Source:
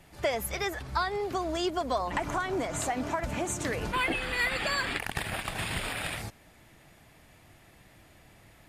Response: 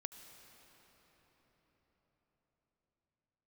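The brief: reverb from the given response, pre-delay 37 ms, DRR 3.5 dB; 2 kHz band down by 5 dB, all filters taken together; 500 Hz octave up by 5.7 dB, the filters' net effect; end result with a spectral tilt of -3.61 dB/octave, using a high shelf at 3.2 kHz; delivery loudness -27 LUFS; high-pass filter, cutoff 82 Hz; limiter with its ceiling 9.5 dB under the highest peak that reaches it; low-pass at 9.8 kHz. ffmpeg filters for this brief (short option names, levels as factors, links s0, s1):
-filter_complex "[0:a]highpass=82,lowpass=9800,equalizer=f=500:t=o:g=8,equalizer=f=2000:t=o:g=-8.5,highshelf=f=3200:g=5.5,alimiter=limit=0.075:level=0:latency=1,asplit=2[s0][s1];[1:a]atrim=start_sample=2205,adelay=37[s2];[s1][s2]afir=irnorm=-1:irlink=0,volume=1[s3];[s0][s3]amix=inputs=2:normalize=0,volume=1.41"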